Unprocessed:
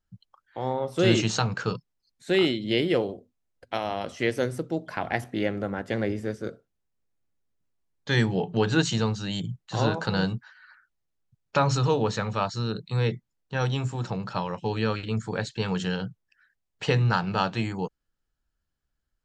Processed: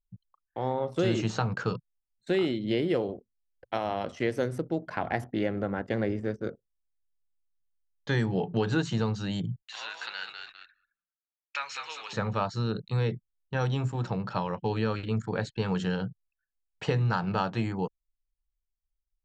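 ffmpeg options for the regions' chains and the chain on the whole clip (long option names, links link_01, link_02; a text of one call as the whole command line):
ffmpeg -i in.wav -filter_complex "[0:a]asettb=1/sr,asplit=3[link_01][link_02][link_03];[link_01]atrim=end=9.624[link_04];[link_02]atrim=start=9.62:end=12.13,asetpts=PTS-STARTPTS,afade=type=in:duration=0.004:curve=qsin,afade=type=out:start_time=2.506:duration=0.004:curve=qsin,highpass=frequency=2300:width_type=q:width=2.6,asplit=5[link_05][link_06][link_07][link_08][link_09];[link_06]adelay=200,afreqshift=-71,volume=-7dB[link_10];[link_07]adelay=400,afreqshift=-142,volume=-16.1dB[link_11];[link_08]adelay=600,afreqshift=-213,volume=-25.2dB[link_12];[link_09]adelay=800,afreqshift=-284,volume=-34.4dB[link_13];[link_05][link_10][link_11][link_12][link_13]amix=inputs=5:normalize=0,atrim=end_sample=110691[link_14];[link_03]atrim=start=12.126[link_15];[link_04][link_14]acrossfade=duration=0.004:curve1=hsin:curve2=qsin[link_16];[link_16][link_15]acrossfade=duration=0.004:curve1=qsin:curve2=hsin,anlmdn=0.0398,highshelf=frequency=4500:gain=-8,acrossover=split=2000|4100[link_17][link_18][link_19];[link_17]acompressor=threshold=-23dB:ratio=4[link_20];[link_18]acompressor=threshold=-46dB:ratio=4[link_21];[link_19]acompressor=threshold=-45dB:ratio=4[link_22];[link_20][link_21][link_22]amix=inputs=3:normalize=0" out.wav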